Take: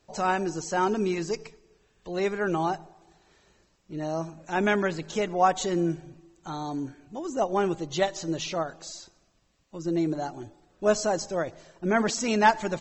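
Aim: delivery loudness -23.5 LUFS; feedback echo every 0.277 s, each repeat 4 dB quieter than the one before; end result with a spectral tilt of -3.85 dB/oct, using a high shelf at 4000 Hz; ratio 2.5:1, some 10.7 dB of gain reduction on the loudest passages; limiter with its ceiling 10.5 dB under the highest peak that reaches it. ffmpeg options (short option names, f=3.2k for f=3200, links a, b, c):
-af "highshelf=f=4k:g=7.5,acompressor=threshold=-31dB:ratio=2.5,alimiter=level_in=2.5dB:limit=-24dB:level=0:latency=1,volume=-2.5dB,aecho=1:1:277|554|831|1108|1385|1662|1939|2216|2493:0.631|0.398|0.25|0.158|0.0994|0.0626|0.0394|0.0249|0.0157,volume=11dB"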